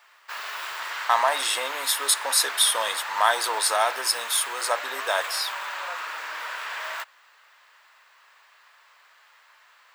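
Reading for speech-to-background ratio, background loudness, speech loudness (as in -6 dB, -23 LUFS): 8.5 dB, -32.0 LUFS, -23.5 LUFS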